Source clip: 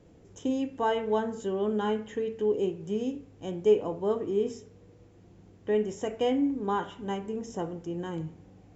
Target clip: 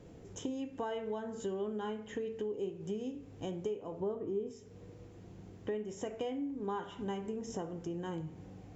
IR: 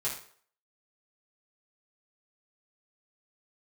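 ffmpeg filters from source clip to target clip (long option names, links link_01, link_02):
-filter_complex "[0:a]asettb=1/sr,asplit=3[link_01][link_02][link_03];[link_01]atrim=end=4.004[link_04];[link_02]atrim=start=4:end=4.51,asetpts=PTS-STARTPTS,afade=type=in:duration=0.004:curve=qsin,afade=type=out:start_time=0.506:duration=0.004:curve=qsin,tiltshelf=frequency=1400:gain=5.5[link_05];[link_03]atrim=start=4.506[link_06];[link_04][link_05]acrossfade=duration=0.004:curve1=hsin:curve2=qsin[link_07];[link_07][link_06]acrossfade=duration=0.004:curve1=qsin:curve2=hsin,acompressor=threshold=-39dB:ratio=6,asplit=2[link_08][link_09];[1:a]atrim=start_sample=2205[link_10];[link_09][link_10]afir=irnorm=-1:irlink=0,volume=-16.5dB[link_11];[link_08][link_11]amix=inputs=2:normalize=0,volume=2dB"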